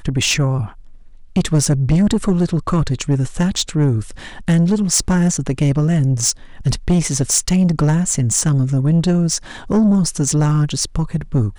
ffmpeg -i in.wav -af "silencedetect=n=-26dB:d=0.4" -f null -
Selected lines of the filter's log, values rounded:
silence_start: 0.68
silence_end: 1.36 | silence_duration: 0.68